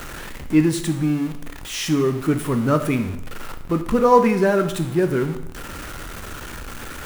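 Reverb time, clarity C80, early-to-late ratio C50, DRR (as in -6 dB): 0.75 s, 13.0 dB, 10.5 dB, 7.0 dB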